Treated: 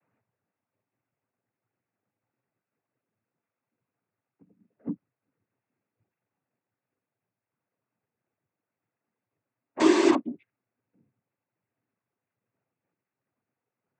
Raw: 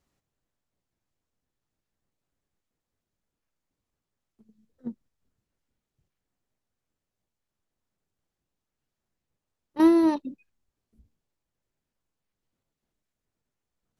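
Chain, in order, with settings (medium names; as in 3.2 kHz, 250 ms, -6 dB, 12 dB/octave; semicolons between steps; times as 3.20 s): elliptic low-pass 2.3 kHz; in parallel at -4.5 dB: integer overflow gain 20 dB; on the sum: noise-vocoded speech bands 16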